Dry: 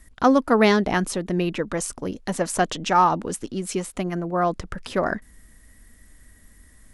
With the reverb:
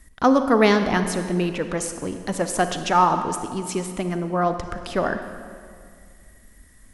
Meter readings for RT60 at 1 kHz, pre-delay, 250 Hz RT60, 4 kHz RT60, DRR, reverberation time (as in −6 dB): 2.1 s, 34 ms, 2.3 s, 1.6 s, 8.0 dB, 2.2 s